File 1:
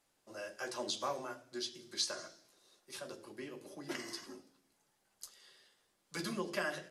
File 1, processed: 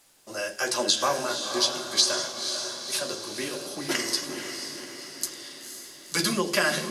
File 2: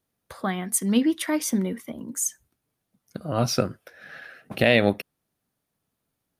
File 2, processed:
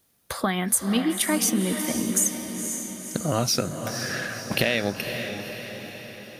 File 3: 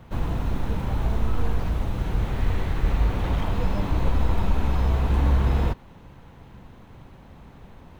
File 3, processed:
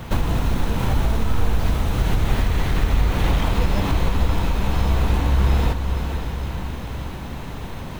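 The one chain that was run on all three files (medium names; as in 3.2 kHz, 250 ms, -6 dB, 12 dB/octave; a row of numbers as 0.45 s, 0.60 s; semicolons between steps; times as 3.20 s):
treble shelf 2.6 kHz +8.5 dB; compression 6:1, threshold -29 dBFS; on a send: echo that smears into a reverb 509 ms, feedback 56%, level -7 dB; on the sum: peak normalisation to -6 dBFS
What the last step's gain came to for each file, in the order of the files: +11.5 dB, +8.0 dB, +12.5 dB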